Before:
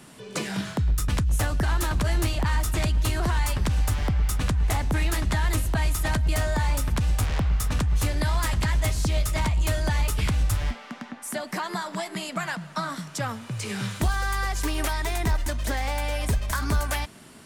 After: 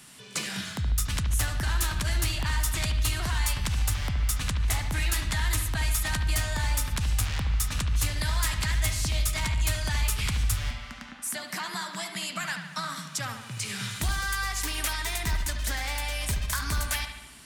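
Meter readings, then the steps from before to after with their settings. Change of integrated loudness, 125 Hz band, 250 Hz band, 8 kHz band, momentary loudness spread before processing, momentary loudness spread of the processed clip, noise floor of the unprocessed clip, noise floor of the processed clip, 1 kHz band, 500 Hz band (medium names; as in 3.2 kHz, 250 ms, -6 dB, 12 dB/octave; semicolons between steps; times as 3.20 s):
-2.5 dB, -4.0 dB, -8.0 dB, +3.0 dB, 7 LU, 6 LU, -45 dBFS, -44 dBFS, -5.0 dB, -9.5 dB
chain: amplifier tone stack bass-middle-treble 5-5-5; on a send: bucket-brigade echo 73 ms, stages 2048, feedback 58%, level -8 dB; on the sum: trim +9 dB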